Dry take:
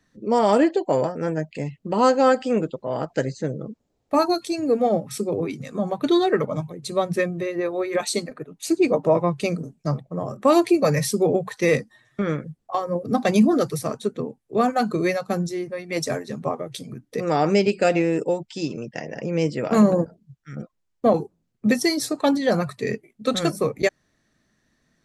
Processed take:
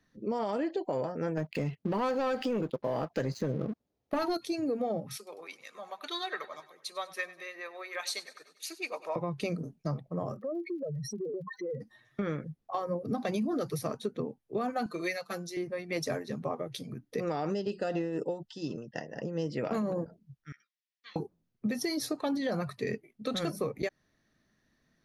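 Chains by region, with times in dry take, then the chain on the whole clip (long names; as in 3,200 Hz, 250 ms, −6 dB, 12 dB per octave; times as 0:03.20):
0:01.37–0:04.37: high-pass filter 47 Hz + leveller curve on the samples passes 2
0:05.17–0:09.16: high-pass filter 1,200 Hz + repeating echo 98 ms, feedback 58%, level −18 dB
0:10.39–0:11.80: expanding power law on the bin magnitudes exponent 3.6 + downward compressor 3 to 1, threshold −32 dBFS + surface crackle 66 per second −52 dBFS
0:14.86–0:15.57: high-pass filter 1,400 Hz 6 dB per octave + comb filter 5.9 ms, depth 87%
0:17.50–0:19.50: amplitude tremolo 4.1 Hz, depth 59% + Butterworth band-reject 2,300 Hz, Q 3.6
0:20.52–0:21.16: elliptic band-pass filter 1,800–5,700 Hz, stop band 50 dB + double-tracking delay 15 ms −7.5 dB
whole clip: parametric band 7,800 Hz −13 dB 0.3 octaves; brickwall limiter −14.5 dBFS; downward compressor, threshold −23 dBFS; level −5 dB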